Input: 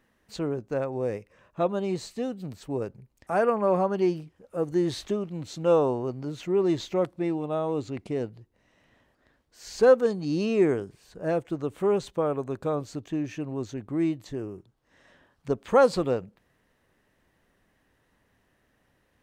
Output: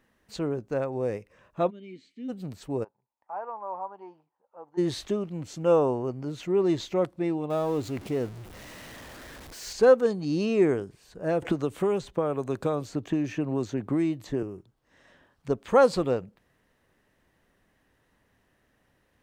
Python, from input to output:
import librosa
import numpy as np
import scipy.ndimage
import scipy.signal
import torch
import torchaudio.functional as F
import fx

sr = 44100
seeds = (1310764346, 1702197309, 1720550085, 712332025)

y = fx.vowel_filter(x, sr, vowel='i', at=(1.69, 2.28), fade=0.02)
y = fx.bandpass_q(y, sr, hz=900.0, q=6.6, at=(2.83, 4.77), fade=0.02)
y = fx.peak_eq(y, sr, hz=3900.0, db=-10.5, octaves=0.27, at=(5.34, 6.26))
y = fx.zero_step(y, sr, step_db=-39.5, at=(7.5, 9.73))
y = fx.band_squash(y, sr, depth_pct=100, at=(11.42, 14.43))